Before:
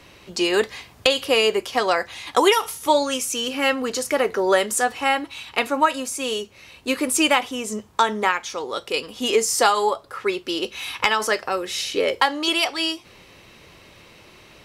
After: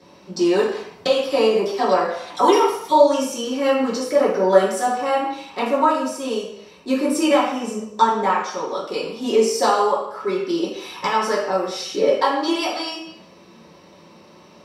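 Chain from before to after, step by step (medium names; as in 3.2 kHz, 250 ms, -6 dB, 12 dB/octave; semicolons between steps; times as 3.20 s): 1.21–3.28 s: phase dispersion lows, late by 40 ms, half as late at 1.3 kHz; reverberation RT60 0.70 s, pre-delay 3 ms, DRR -9.5 dB; trim -14 dB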